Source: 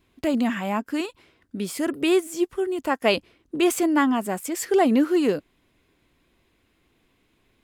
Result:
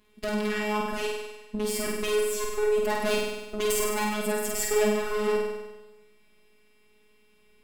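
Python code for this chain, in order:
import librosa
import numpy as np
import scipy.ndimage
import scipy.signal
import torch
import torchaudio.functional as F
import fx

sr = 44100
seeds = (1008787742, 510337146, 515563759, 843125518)

y = fx.tube_stage(x, sr, drive_db=29.0, bias=0.75)
y = fx.robotise(y, sr, hz=211.0)
y = fx.room_flutter(y, sr, wall_m=8.5, rt60_s=1.1)
y = y * librosa.db_to_amplitude(6.5)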